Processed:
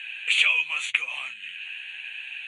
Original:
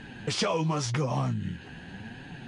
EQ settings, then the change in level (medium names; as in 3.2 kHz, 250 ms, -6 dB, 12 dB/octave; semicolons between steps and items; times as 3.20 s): resonant high-pass 2.5 kHz, resonance Q 8; Butterworth band-stop 5.2 kHz, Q 1.5; +4.5 dB